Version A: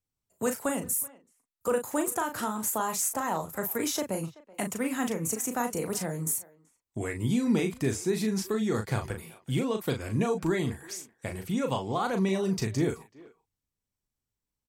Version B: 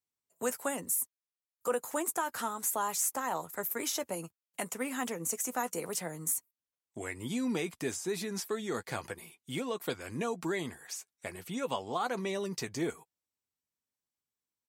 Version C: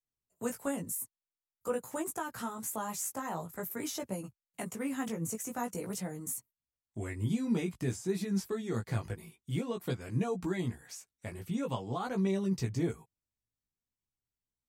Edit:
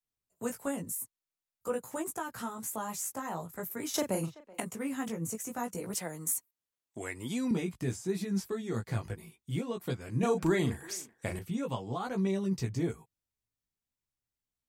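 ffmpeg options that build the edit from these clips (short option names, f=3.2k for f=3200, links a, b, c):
-filter_complex "[0:a]asplit=2[a][b];[2:a]asplit=4[c][d][e][f];[c]atrim=end=3.942[g];[a]atrim=start=3.938:end=4.602[h];[d]atrim=start=4.598:end=5.942[i];[1:a]atrim=start=5.938:end=7.512[j];[e]atrim=start=7.508:end=10.232[k];[b]atrim=start=10.228:end=11.392[l];[f]atrim=start=11.388[m];[g][h]acrossfade=d=0.004:c1=hsin:c2=hsin[n];[n][i]acrossfade=d=0.004:c1=hsin:c2=hsin[o];[o][j]acrossfade=d=0.004:c1=hsin:c2=hsin[p];[p][k]acrossfade=d=0.004:c1=hsin:c2=hsin[q];[q][l]acrossfade=d=0.004:c1=hsin:c2=hsin[r];[r][m]acrossfade=d=0.004:c1=hsin:c2=hsin"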